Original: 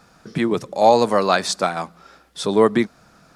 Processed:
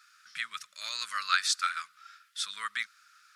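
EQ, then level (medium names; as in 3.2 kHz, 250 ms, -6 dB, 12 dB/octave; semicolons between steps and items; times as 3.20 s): elliptic high-pass 1.3 kHz, stop band 40 dB; -3.5 dB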